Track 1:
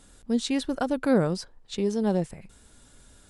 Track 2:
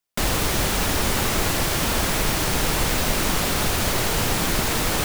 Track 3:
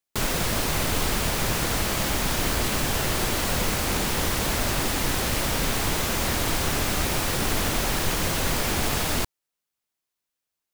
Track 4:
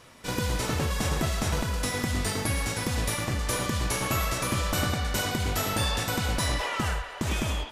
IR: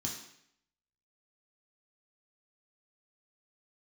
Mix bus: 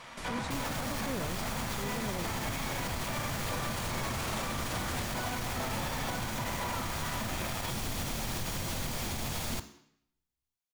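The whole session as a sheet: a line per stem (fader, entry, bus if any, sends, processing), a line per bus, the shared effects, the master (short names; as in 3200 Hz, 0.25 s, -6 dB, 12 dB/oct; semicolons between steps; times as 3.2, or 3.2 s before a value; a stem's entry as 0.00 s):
-10.0 dB, 0.00 s, no send, dry
-13.0 dB, 0.00 s, no send, steep low-pass 11000 Hz; auto duck -9 dB, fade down 0.25 s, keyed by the first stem
-11.0 dB, 0.35 s, send -8.5 dB, dry
+2.5 dB, 0.00 s, send -4 dB, half-waves squared off; band-pass 1700 Hz, Q 0.79; slew limiter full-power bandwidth 24 Hz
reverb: on, RT60 0.70 s, pre-delay 3 ms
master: limiter -25 dBFS, peak gain reduction 9.5 dB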